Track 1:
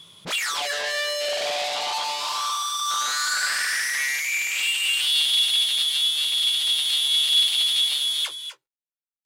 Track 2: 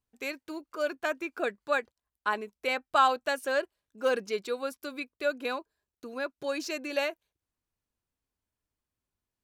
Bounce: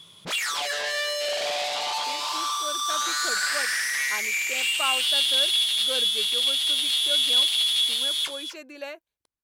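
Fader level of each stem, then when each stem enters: -1.5, -7.0 dB; 0.00, 1.85 s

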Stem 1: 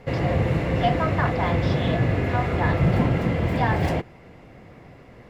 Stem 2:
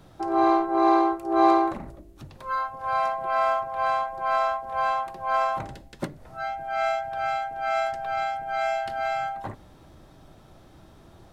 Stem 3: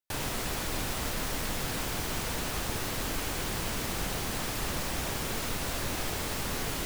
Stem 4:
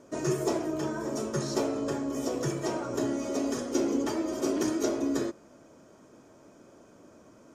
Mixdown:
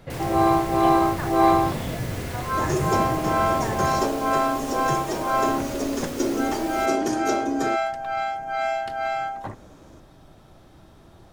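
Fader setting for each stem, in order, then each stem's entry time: -8.0, +1.0, -5.0, +3.0 dB; 0.00, 0.00, 0.00, 2.45 s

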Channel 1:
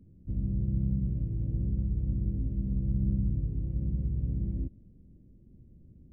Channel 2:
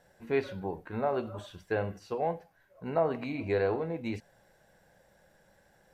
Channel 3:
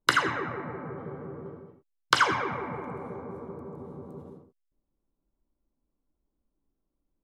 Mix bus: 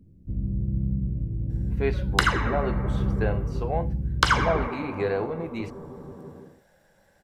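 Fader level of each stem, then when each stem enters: +2.5, +2.0, +1.0 dB; 0.00, 1.50, 2.10 s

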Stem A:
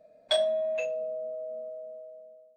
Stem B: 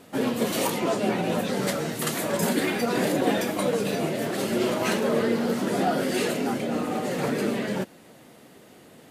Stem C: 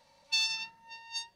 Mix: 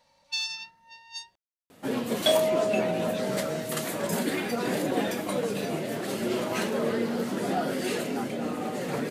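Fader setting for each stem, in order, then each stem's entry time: +2.5, -4.0, -1.5 dB; 1.95, 1.70, 0.00 s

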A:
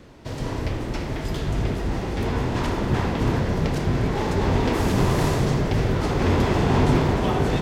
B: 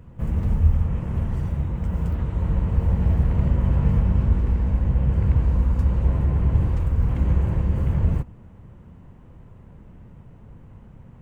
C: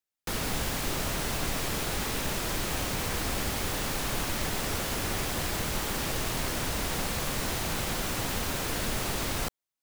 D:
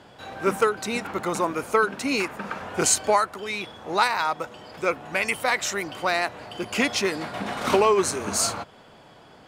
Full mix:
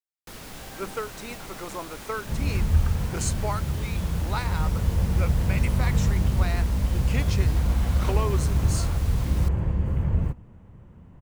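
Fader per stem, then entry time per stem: off, -3.0 dB, -10.0 dB, -11.0 dB; off, 2.10 s, 0.00 s, 0.35 s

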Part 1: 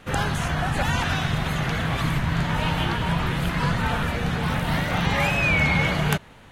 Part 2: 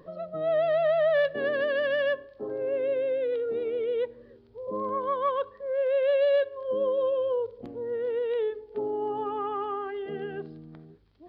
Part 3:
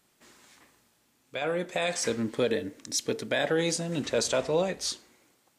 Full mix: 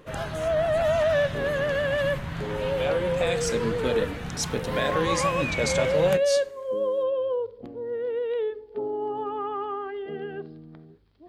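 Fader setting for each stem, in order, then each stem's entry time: -9.5, +0.5, -0.5 dB; 0.00, 0.00, 1.45 s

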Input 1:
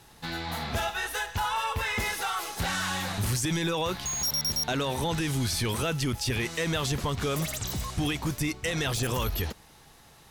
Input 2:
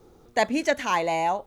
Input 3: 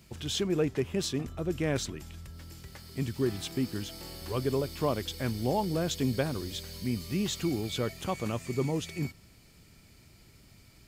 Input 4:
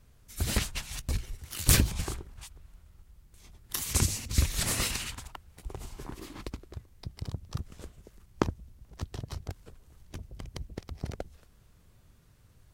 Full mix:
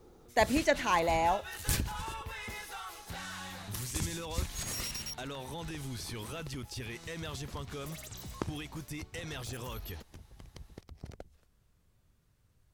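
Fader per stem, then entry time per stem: -12.5 dB, -4.0 dB, off, -9.5 dB; 0.50 s, 0.00 s, off, 0.00 s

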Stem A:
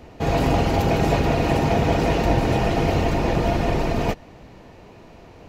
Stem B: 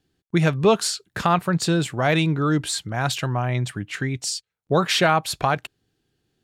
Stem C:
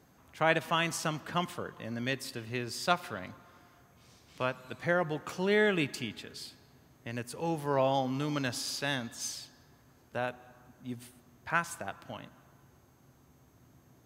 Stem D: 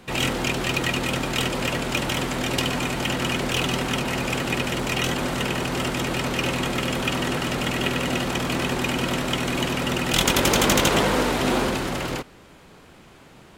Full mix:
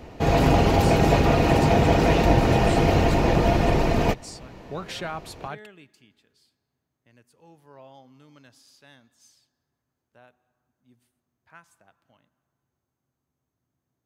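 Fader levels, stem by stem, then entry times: +1.0 dB, -14.5 dB, -20.0 dB, off; 0.00 s, 0.00 s, 0.00 s, off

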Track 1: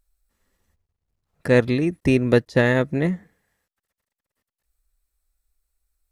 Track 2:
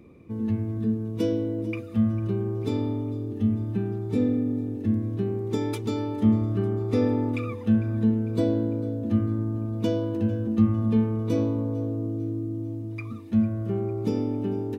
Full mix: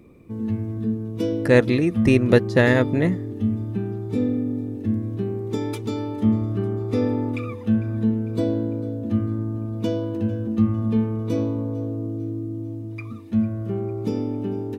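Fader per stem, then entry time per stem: +1.0, +1.0 dB; 0.00, 0.00 s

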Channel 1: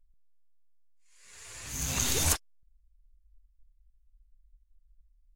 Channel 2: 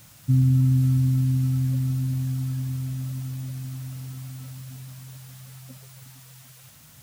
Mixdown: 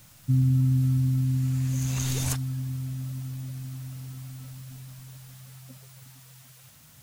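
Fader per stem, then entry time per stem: -5.0, -3.0 dB; 0.00, 0.00 s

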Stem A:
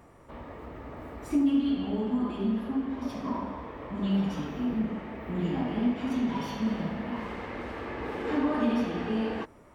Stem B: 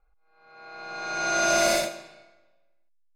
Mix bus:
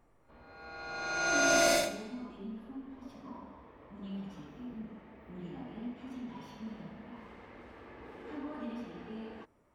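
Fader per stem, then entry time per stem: -14.5, -4.0 dB; 0.00, 0.00 s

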